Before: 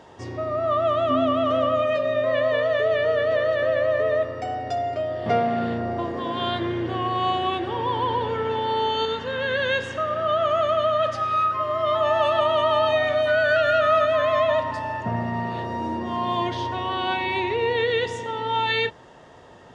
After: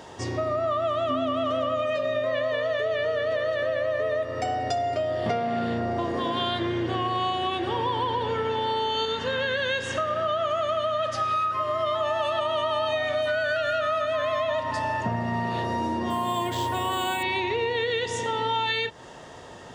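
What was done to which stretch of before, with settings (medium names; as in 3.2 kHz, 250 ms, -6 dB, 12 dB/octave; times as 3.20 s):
16.10–17.23 s: decimation joined by straight lines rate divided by 4×
whole clip: treble shelf 4.6 kHz +10.5 dB; compression 6:1, threshold -27 dBFS; trim +3.5 dB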